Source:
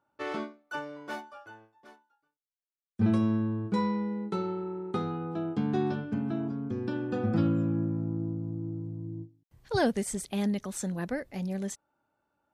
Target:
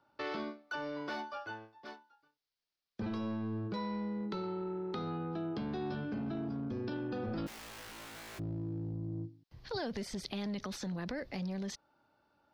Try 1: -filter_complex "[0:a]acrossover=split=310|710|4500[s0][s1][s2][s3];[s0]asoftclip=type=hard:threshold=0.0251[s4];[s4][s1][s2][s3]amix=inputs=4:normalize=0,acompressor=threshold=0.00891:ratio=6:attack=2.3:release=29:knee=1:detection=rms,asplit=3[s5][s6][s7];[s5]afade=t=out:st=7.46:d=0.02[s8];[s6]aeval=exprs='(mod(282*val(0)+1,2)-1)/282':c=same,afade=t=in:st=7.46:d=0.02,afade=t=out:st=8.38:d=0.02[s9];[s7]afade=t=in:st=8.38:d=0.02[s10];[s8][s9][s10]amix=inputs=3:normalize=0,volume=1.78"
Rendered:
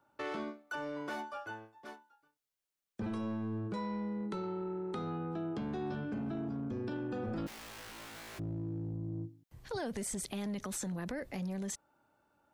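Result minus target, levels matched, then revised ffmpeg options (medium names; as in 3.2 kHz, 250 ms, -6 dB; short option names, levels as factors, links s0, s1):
8 kHz band +8.5 dB
-filter_complex "[0:a]acrossover=split=310|710|4500[s0][s1][s2][s3];[s0]asoftclip=type=hard:threshold=0.0251[s4];[s4][s1][s2][s3]amix=inputs=4:normalize=0,acompressor=threshold=0.00891:ratio=6:attack=2.3:release=29:knee=1:detection=rms,highshelf=f=6300:t=q:w=3:g=-10,asplit=3[s5][s6][s7];[s5]afade=t=out:st=7.46:d=0.02[s8];[s6]aeval=exprs='(mod(282*val(0)+1,2)-1)/282':c=same,afade=t=in:st=7.46:d=0.02,afade=t=out:st=8.38:d=0.02[s9];[s7]afade=t=in:st=8.38:d=0.02[s10];[s8][s9][s10]amix=inputs=3:normalize=0,volume=1.78"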